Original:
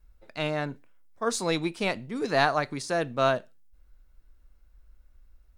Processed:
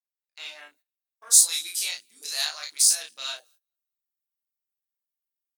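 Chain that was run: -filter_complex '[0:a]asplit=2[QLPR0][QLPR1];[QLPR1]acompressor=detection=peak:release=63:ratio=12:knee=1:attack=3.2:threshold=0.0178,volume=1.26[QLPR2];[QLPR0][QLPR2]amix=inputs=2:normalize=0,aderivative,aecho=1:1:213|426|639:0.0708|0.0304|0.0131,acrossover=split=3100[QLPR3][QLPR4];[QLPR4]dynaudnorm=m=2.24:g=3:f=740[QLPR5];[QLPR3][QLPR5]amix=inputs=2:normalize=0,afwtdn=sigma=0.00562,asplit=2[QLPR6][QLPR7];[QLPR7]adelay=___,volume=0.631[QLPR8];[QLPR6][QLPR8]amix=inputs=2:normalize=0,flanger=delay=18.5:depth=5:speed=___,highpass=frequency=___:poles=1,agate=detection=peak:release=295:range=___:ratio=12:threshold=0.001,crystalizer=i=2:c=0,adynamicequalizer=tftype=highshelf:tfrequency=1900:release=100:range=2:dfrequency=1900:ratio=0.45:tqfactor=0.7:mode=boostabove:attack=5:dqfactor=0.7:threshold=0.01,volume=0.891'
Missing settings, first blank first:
34, 0.74, 430, 0.112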